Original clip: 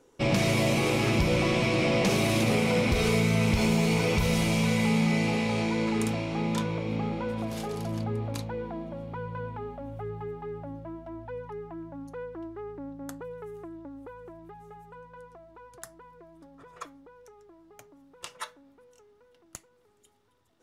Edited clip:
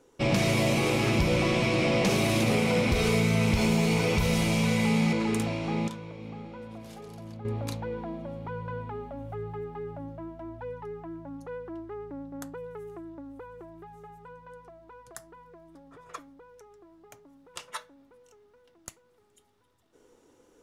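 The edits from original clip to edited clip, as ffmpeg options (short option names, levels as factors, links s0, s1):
-filter_complex "[0:a]asplit=4[s0][s1][s2][s3];[s0]atrim=end=5.132[s4];[s1]atrim=start=5.798:end=6.552[s5];[s2]atrim=start=6.548:end=8.122,asetpts=PTS-STARTPTS,volume=0.299[s6];[s3]atrim=start=8.118[s7];[s4][s5]acrossfade=d=0.004:c1=hsin:c2=hsin[s8];[s8][s6]acrossfade=d=0.004:c1=hsin:c2=hsin[s9];[s9][s7]acrossfade=d=0.004:c1=hsin:c2=hsin"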